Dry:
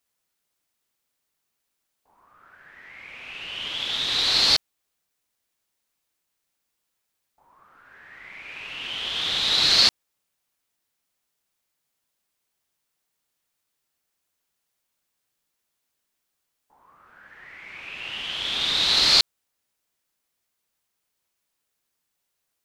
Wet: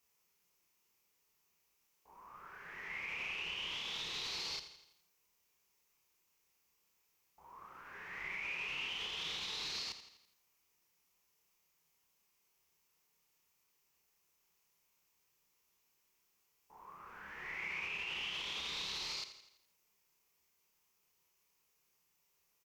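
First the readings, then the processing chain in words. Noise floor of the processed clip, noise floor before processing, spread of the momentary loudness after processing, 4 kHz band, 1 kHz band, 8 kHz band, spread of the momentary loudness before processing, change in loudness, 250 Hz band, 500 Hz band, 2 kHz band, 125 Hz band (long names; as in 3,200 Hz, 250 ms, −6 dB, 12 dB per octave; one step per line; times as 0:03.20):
−78 dBFS, −79 dBFS, 16 LU, −20.0 dB, −13.0 dB, −17.5 dB, 21 LU, −20.0 dB, −16.0 dB, −15.5 dB, −9.5 dB, −15.5 dB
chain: double-tracking delay 30 ms −3 dB
downward compressor 2.5 to 1, threshold −38 dBFS, peak gain reduction 17.5 dB
EQ curve with evenly spaced ripples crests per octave 0.78, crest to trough 7 dB
brickwall limiter −31.5 dBFS, peak gain reduction 11 dB
feedback echo at a low word length 83 ms, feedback 55%, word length 12 bits, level −11.5 dB
level −1.5 dB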